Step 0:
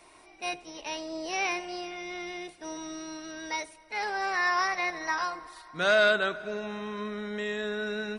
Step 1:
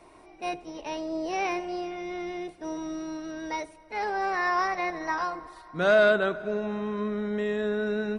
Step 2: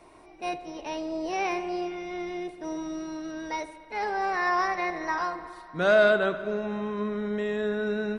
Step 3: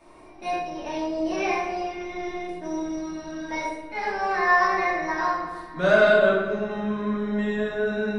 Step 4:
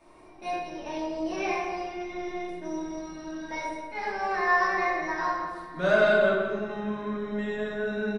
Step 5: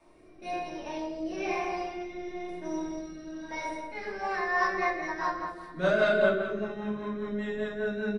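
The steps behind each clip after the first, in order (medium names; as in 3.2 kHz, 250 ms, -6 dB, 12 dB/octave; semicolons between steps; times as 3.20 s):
tilt shelf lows +7 dB, about 1.3 kHz
bucket-brigade echo 73 ms, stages 2048, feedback 75%, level -16 dB
simulated room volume 330 m³, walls mixed, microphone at 2.6 m; trim -4 dB
echo from a far wall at 30 m, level -9 dB; trim -4 dB
rotary cabinet horn 1 Hz, later 5 Hz, at 3.89 s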